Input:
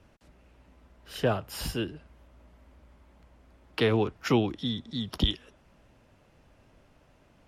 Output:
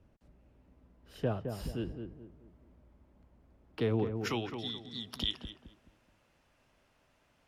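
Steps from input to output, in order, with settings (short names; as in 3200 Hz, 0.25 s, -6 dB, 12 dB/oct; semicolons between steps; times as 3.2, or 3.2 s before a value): tilt shelf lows +5.5 dB, about 700 Hz, from 4.15 s lows -5.5 dB; darkening echo 0.214 s, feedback 37%, low-pass 1200 Hz, level -6 dB; gain -9 dB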